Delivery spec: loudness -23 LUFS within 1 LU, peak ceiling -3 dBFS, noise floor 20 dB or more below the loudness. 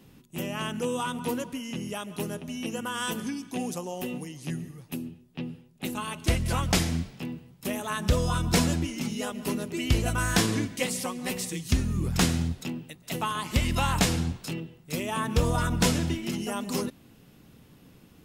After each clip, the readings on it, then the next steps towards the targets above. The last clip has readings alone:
loudness -29.5 LUFS; peak -8.0 dBFS; loudness target -23.0 LUFS
-> gain +6.5 dB; limiter -3 dBFS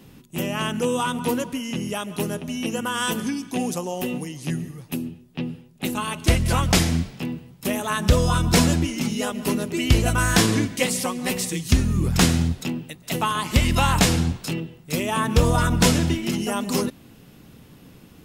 loudness -23.0 LUFS; peak -3.0 dBFS; noise floor -49 dBFS

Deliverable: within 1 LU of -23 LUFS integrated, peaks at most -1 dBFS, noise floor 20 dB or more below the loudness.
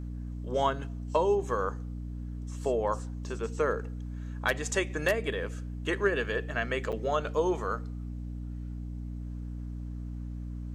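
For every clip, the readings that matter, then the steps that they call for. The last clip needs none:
dropouts 1; longest dropout 7.2 ms; hum 60 Hz; harmonics up to 300 Hz; hum level -35 dBFS; loudness -32.5 LUFS; peak -12.5 dBFS; loudness target -23.0 LUFS
-> interpolate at 6.92, 7.2 ms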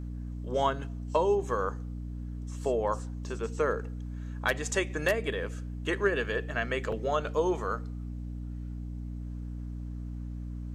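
dropouts 0; hum 60 Hz; harmonics up to 300 Hz; hum level -35 dBFS
-> de-hum 60 Hz, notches 5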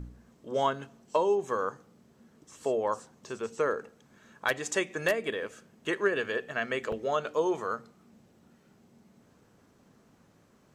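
hum none; loudness -31.5 LUFS; peak -13.5 dBFS; loudness target -23.0 LUFS
-> gain +8.5 dB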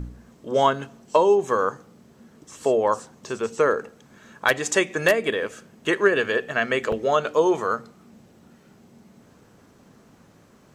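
loudness -23.0 LUFS; peak -5.0 dBFS; noise floor -55 dBFS

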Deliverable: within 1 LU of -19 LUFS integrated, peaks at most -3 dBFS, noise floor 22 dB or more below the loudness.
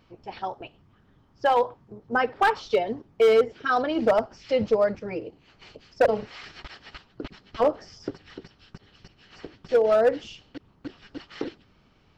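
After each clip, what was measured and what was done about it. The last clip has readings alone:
clipped 0.6%; flat tops at -13.5 dBFS; loudness -24.5 LUFS; peak -13.5 dBFS; loudness target -19.0 LUFS
-> clip repair -13.5 dBFS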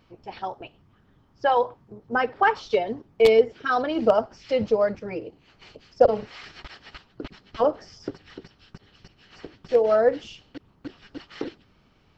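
clipped 0.0%; loudness -23.0 LUFS; peak -4.5 dBFS; loudness target -19.0 LUFS
-> gain +4 dB; limiter -3 dBFS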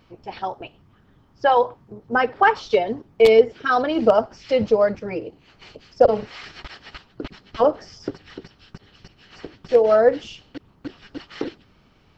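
loudness -19.5 LUFS; peak -3.0 dBFS; noise floor -57 dBFS

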